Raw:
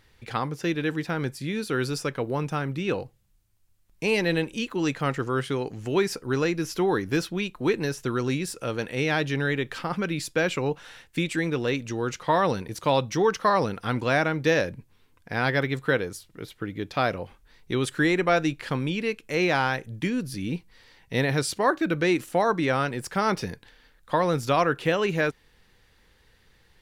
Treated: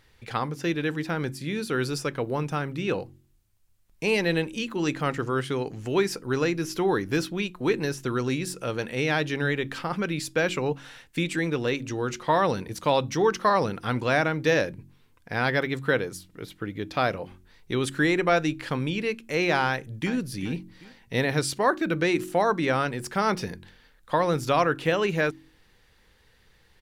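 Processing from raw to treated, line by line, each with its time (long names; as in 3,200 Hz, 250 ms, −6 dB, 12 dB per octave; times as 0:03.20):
0:19.67–0:20.13: delay throw 390 ms, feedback 35%, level −13 dB
whole clip: hum removal 45.54 Hz, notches 8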